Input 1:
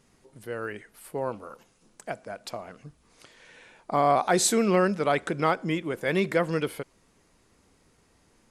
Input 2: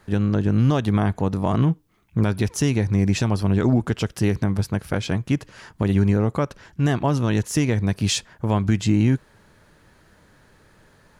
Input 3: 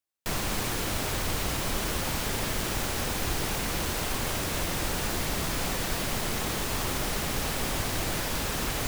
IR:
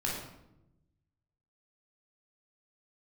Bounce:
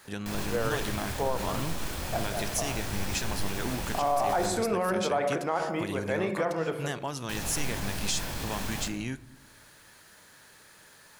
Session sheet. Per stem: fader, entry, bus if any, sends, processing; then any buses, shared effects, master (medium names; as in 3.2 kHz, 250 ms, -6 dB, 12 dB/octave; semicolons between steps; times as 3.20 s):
-2.0 dB, 0.05 s, send -21 dB, peaking EQ 770 Hz +14.5 dB 2.6 oct; auto duck -12 dB, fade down 1.95 s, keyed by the second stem
-1.0 dB, 0.00 s, send -21.5 dB, tilt EQ +3.5 dB/octave; compression 1.5:1, threshold -47 dBFS, peak gain reduction 12.5 dB
-2.5 dB, 0.00 s, muted 4.46–7.29 s, send -7 dB, peak limiter -24.5 dBFS, peak gain reduction 8 dB; chorus 2.9 Hz, depth 7.4 ms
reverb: on, RT60 0.90 s, pre-delay 15 ms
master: peak limiter -18 dBFS, peak gain reduction 10 dB